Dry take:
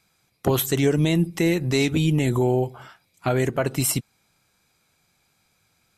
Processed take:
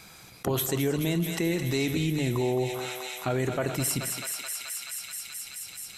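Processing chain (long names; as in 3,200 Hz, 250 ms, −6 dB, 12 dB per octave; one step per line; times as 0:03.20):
mains-hum notches 50/100/150 Hz
feedback echo with a high-pass in the loop 215 ms, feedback 82%, high-pass 910 Hz, level −8 dB
on a send at −17 dB: convolution reverb RT60 0.45 s, pre-delay 53 ms
on the sum: envelope flattener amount 50%
level −8 dB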